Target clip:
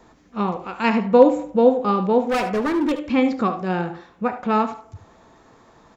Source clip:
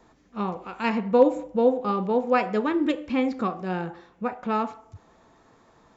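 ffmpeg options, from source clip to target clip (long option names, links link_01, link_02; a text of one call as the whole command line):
ffmpeg -i in.wav -filter_complex "[0:a]asettb=1/sr,asplit=3[link_01][link_02][link_03];[link_01]atrim=end=2.204[link_04];[link_02]atrim=start=2.2:end=2.92,asetpts=PTS-STARTPTS,afade=type=in:duration=0.004:curve=qsin,afade=type=out:start_time=0.716:duration=0.004:curve=qsin,volume=23.5dB,asoftclip=hard,volume=-23.5dB[link_05];[link_03]atrim=start=2.916[link_06];[link_04][link_05]acrossfade=duration=0.004:curve1=hsin:curve2=qsin[link_07];[link_07][link_06]acrossfade=duration=0.004:curve1=qsin:curve2=hsin,aecho=1:1:74:0.251,volume=5.5dB" out.wav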